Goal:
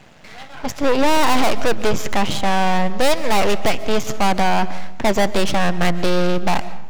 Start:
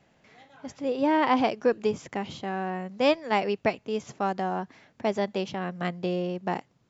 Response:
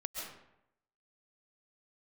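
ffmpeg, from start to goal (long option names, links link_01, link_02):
-filter_complex "[0:a]equalizer=frequency=360:width_type=o:width=1:gain=-5.5,aeval=exprs='max(val(0),0)':channel_layout=same,acontrast=36,volume=23.5dB,asoftclip=hard,volume=-23.5dB,asplit=2[link_01][link_02];[1:a]atrim=start_sample=2205[link_03];[link_02][link_03]afir=irnorm=-1:irlink=0,volume=-13dB[link_04];[link_01][link_04]amix=inputs=2:normalize=0,apsyclip=22dB,volume=-7.5dB"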